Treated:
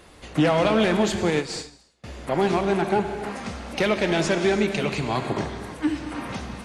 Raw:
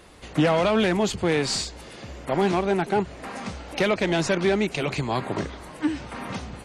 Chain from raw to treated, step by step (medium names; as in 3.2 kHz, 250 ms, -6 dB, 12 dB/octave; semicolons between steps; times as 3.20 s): gated-style reverb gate 360 ms flat, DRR 6 dB; 1.30–2.04 s: upward expansion 2.5:1, over -39 dBFS